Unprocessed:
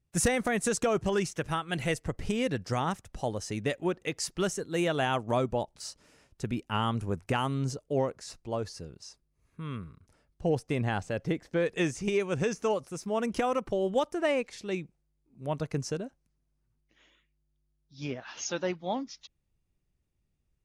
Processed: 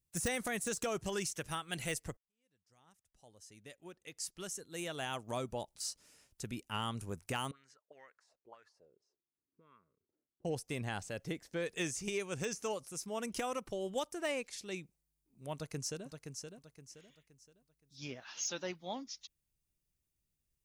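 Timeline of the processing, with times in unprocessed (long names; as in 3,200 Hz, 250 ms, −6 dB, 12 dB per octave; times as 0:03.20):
0:02.17–0:05.60: fade in quadratic
0:07.51–0:10.45: envelope filter 290–1,800 Hz, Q 4.6, up, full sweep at −28 dBFS
0:15.53–0:16.06: delay throw 520 ms, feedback 35%, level −6.5 dB
whole clip: de-essing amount 75%; first-order pre-emphasis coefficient 0.8; level +3.5 dB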